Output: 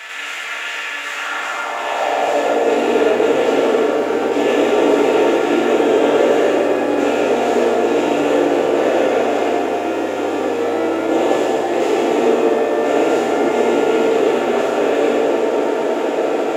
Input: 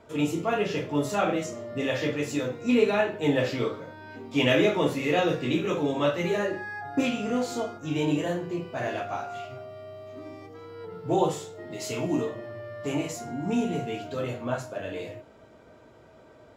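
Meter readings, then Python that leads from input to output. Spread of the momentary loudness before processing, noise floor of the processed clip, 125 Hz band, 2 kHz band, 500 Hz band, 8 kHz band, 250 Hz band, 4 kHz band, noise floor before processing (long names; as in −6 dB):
17 LU, −25 dBFS, −6.5 dB, +11.0 dB, +14.5 dB, +9.0 dB, +9.5 dB, +9.0 dB, −53 dBFS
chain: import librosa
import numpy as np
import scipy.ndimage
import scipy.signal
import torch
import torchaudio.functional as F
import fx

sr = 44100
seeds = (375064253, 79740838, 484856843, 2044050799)

y = fx.bin_compress(x, sr, power=0.2)
y = fx.rev_fdn(y, sr, rt60_s=3.4, lf_ratio=1.0, hf_ratio=0.45, size_ms=61.0, drr_db=-6.5)
y = fx.filter_sweep_highpass(y, sr, from_hz=1800.0, to_hz=390.0, start_s=1.04, end_s=2.93, q=2.0)
y = y * librosa.db_to_amplitude(-9.5)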